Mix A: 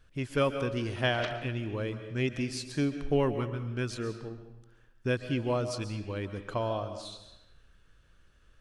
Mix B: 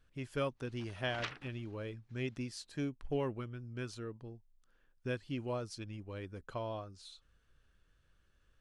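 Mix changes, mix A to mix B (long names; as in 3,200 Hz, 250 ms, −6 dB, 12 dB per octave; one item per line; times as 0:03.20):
speech −7.0 dB
reverb: off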